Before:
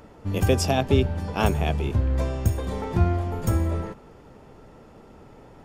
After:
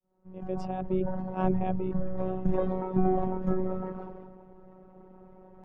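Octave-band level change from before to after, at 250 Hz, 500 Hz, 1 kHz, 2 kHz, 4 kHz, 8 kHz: -2.0 dB, -3.5 dB, -3.5 dB, -15.0 dB, under -25 dB, under -30 dB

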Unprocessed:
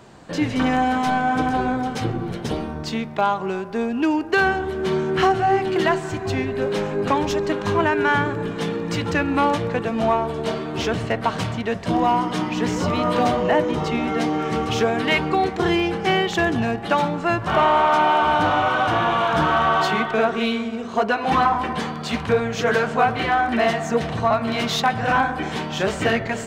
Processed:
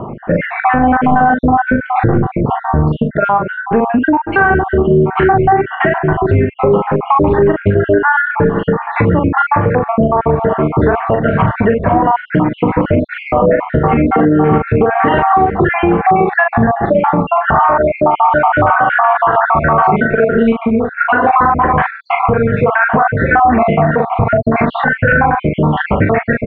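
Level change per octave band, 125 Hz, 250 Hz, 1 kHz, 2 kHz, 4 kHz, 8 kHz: +12.5 dB, +8.5 dB, +8.5 dB, +8.5 dB, n/a, under -40 dB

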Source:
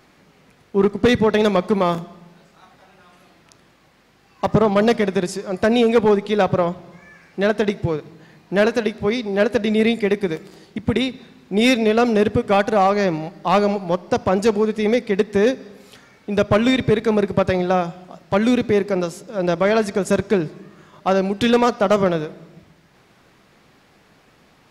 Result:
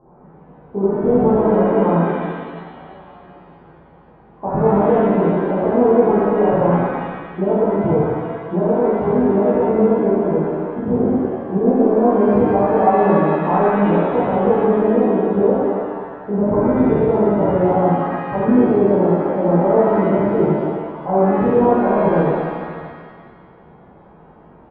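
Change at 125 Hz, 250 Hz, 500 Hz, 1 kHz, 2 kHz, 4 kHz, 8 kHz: +4.5 dB, +4.0 dB, +3.0 dB, +4.0 dB, -5.5 dB, under -15 dB, under -40 dB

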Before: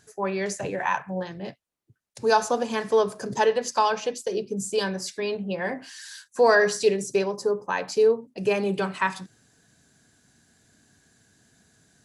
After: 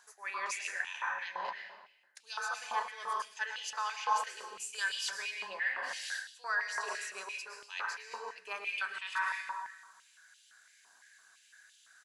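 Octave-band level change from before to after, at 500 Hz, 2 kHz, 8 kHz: -27.5, -4.5, -8.0 dB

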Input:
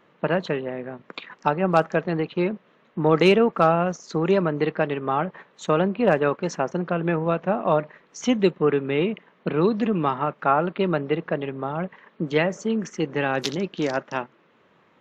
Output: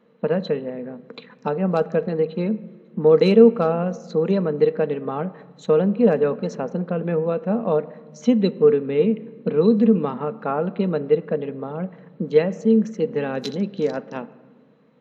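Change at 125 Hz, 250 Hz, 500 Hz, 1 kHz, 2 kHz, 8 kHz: +1.0 dB, +3.5 dB, +4.0 dB, -6.0 dB, -7.5 dB, n/a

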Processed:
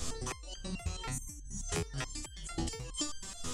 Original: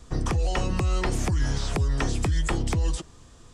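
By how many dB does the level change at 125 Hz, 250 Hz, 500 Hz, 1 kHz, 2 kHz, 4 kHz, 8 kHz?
-16.0, -11.5, -12.0, -12.5, -11.5, -5.0, -1.5 dB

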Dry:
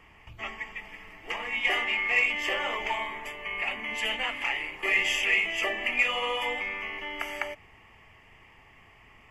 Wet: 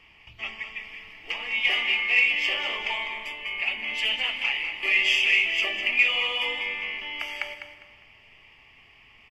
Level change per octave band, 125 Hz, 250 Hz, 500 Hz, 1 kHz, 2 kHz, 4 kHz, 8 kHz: n/a, -4.0 dB, -4.5 dB, -4.0 dB, +3.5 dB, +6.5 dB, -2.0 dB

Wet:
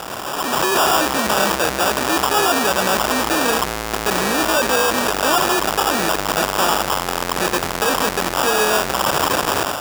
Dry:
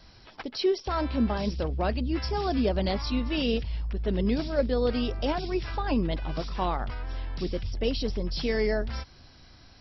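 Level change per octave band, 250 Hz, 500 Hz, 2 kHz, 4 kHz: +4.5, +9.0, +19.5, +15.5 dB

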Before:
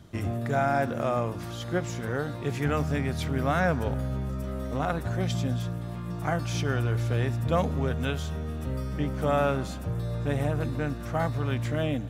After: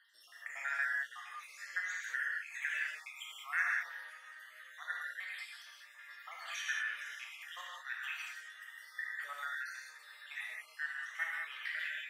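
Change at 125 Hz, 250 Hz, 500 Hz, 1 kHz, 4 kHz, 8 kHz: under -40 dB, under -40 dB, -36.5 dB, -15.5 dB, -6.5 dB, -7.5 dB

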